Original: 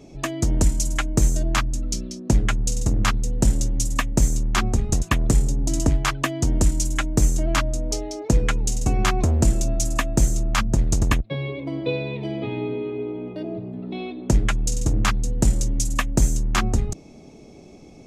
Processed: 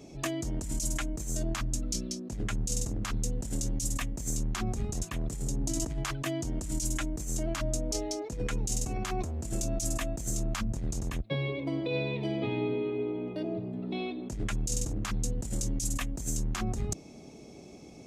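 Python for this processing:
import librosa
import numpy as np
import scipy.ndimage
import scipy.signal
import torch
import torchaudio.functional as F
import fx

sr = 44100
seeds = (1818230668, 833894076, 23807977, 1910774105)

y = fx.highpass(x, sr, hz=60.0, slope=6)
y = fx.high_shelf(y, sr, hz=4800.0, db=5.5)
y = fx.over_compress(y, sr, threshold_db=-25.0, ratio=-1.0)
y = F.gain(torch.from_numpy(y), -6.0).numpy()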